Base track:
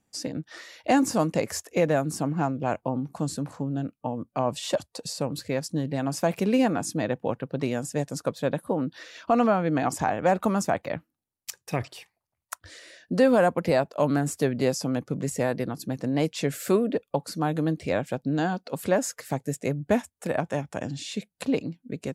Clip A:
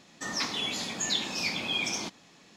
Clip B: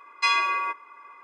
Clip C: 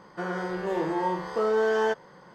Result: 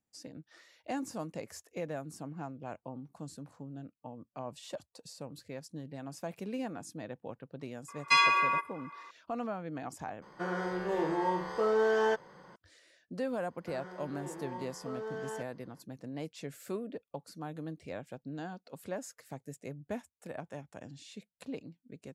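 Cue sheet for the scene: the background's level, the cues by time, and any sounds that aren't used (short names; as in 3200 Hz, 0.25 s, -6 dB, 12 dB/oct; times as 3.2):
base track -15.5 dB
7.88 add B -1.5 dB
10.22 replace with C -3.5 dB
13.49 add C -16 dB
not used: A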